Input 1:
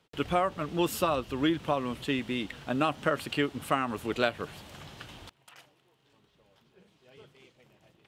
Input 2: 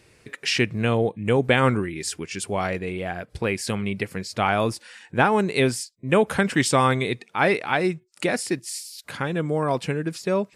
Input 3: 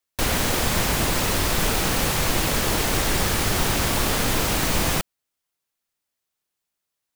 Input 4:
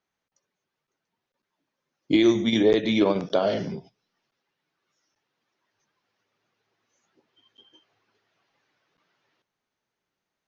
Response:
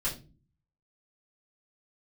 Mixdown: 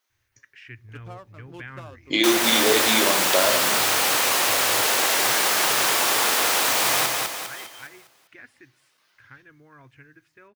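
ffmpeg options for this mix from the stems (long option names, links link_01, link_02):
-filter_complex "[0:a]adynamicsmooth=sensitivity=7.5:basefreq=650,adelay=750,volume=-15.5dB[link_01];[1:a]firequalizer=gain_entry='entry(120,0);entry(170,-29);entry(270,-11);entry(530,-22);entry(1600,0);entry(4300,-23)':delay=0.05:min_phase=1,adelay=100,volume=-14dB,asplit=2[link_02][link_03];[link_03]volume=-23dB[link_04];[2:a]highpass=590,adelay=2050,volume=2dB,asplit=2[link_05][link_06];[link_06]volume=-3dB[link_07];[3:a]highpass=frequency=1100:poles=1,highshelf=frequency=5400:gain=10,acontrast=74,volume=-3.5dB,asplit=2[link_08][link_09];[link_09]volume=-7dB[link_10];[4:a]atrim=start_sample=2205[link_11];[link_04][link_10]amix=inputs=2:normalize=0[link_12];[link_12][link_11]afir=irnorm=-1:irlink=0[link_13];[link_07]aecho=0:1:202|404|606|808|1010|1212:1|0.46|0.212|0.0973|0.0448|0.0206[link_14];[link_01][link_02][link_05][link_08][link_13][link_14]amix=inputs=6:normalize=0"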